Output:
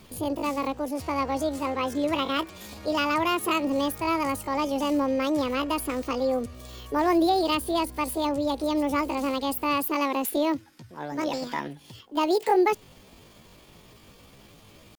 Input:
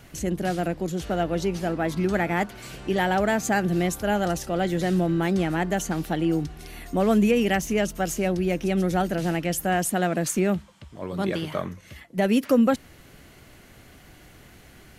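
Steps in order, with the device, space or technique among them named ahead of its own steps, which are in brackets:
chipmunk voice (pitch shifter +8 semitones)
level −2 dB

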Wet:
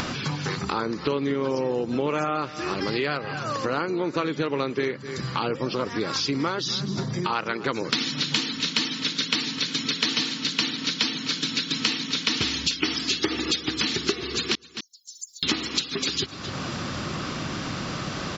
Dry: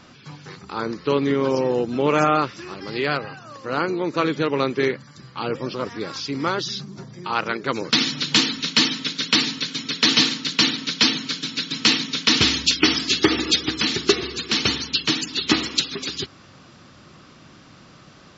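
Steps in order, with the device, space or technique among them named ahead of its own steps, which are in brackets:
0:14.55–0:15.43: inverse Chebyshev high-pass filter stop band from 2,700 Hz, stop band 80 dB
single-tap delay 255 ms −22 dB
upward and downward compression (upward compression, threshold −23 dBFS; downward compressor 6 to 1, threshold −27 dBFS, peak gain reduction 15 dB)
level +4.5 dB

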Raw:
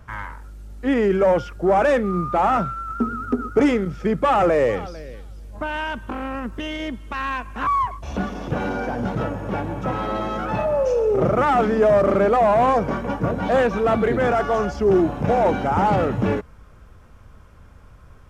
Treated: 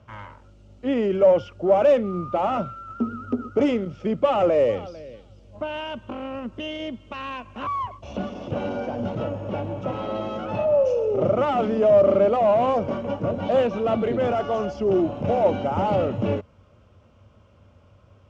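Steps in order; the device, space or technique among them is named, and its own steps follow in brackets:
car door speaker (loudspeaker in its box 82–6,900 Hz, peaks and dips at 97 Hz +9 dB, 230 Hz +5 dB, 340 Hz +3 dB, 580 Hz +10 dB, 1,700 Hz −8 dB, 2,900 Hz +8 dB)
level −7 dB

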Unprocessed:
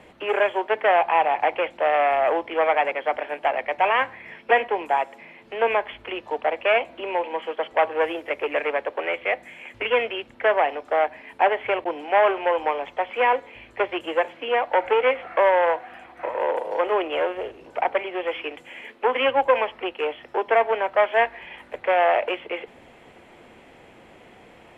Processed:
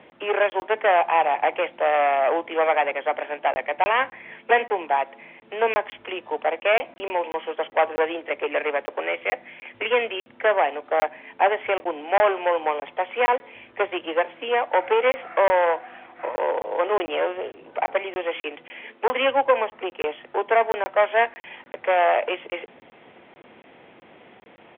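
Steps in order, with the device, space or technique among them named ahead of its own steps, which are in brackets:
0:19.52–0:20.00: dynamic equaliser 2,900 Hz, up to −4 dB, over −38 dBFS, Q 0.88
call with lost packets (high-pass filter 140 Hz 12 dB per octave; downsampling to 8,000 Hz; dropped packets of 20 ms random)

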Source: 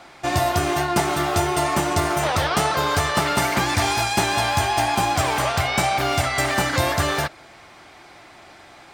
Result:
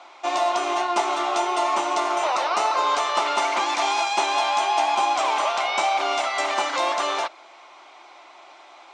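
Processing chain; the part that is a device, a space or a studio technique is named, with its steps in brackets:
phone speaker on a table (loudspeaker in its box 390–6,500 Hz, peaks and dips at 460 Hz −8 dB, 1,000 Hz +5 dB, 1,700 Hz −10 dB, 4,800 Hz −6 dB)
0:02.26–0:02.85: notch filter 3,300 Hz, Q 6.1

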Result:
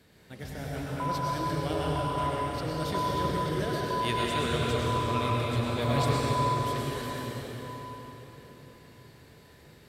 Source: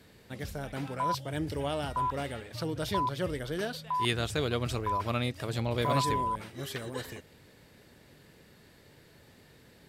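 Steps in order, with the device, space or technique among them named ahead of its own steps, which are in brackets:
cathedral (convolution reverb RT60 4.4 s, pre-delay 90 ms, DRR −5 dB)
level −3.5 dB

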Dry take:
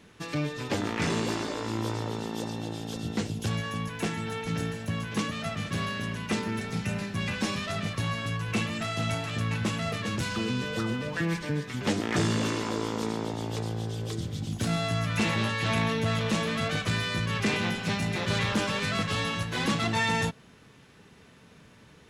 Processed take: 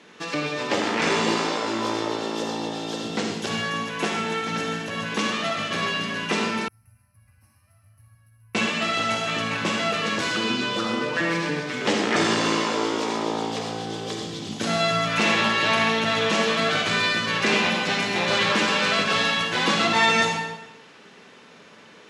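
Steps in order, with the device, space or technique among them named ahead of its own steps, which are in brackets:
supermarket ceiling speaker (band-pass filter 320–6,600 Hz; convolution reverb RT60 0.95 s, pre-delay 44 ms, DRR 1.5 dB)
0:06.68–0:08.55: inverse Chebyshev band-stop filter 170–7,600 Hz, stop band 40 dB
level +7 dB

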